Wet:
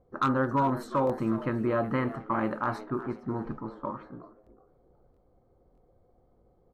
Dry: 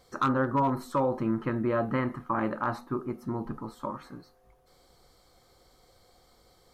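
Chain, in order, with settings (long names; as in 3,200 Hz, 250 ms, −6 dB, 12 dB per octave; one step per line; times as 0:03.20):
echo with shifted repeats 367 ms, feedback 36%, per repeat +97 Hz, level −15.5 dB
low-pass that shuts in the quiet parts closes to 510 Hz, open at −26 dBFS
buffer that repeats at 0:01.05/0:04.42/0:05.12/0:05.73, samples 1,024, times 1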